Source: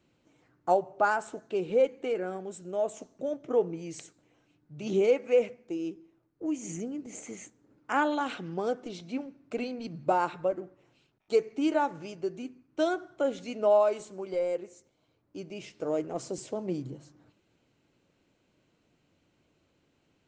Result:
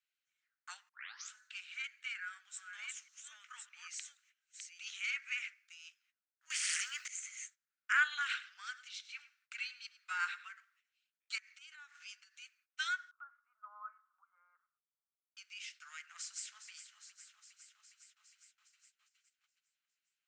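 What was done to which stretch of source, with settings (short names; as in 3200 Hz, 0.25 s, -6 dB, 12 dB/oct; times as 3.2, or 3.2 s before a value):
0.89 tape start 0.42 s
1.87–4.79 reverse delay 0.607 s, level -4.5 dB
6.5–7.08 spectral compressor 10:1
8.2–10.47 echo 0.102 s -16 dB
11.38–12.42 compressor 16:1, threshold -37 dBFS
13.11–15.37 Chebyshev band-pass 450–1300 Hz, order 4
15.95–16.71 echo throw 0.41 s, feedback 75%, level -11 dB
whole clip: gate -55 dBFS, range -15 dB; dynamic EQ 1800 Hz, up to +6 dB, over -48 dBFS, Q 1.9; steep high-pass 1400 Hz 48 dB/oct; gain +1 dB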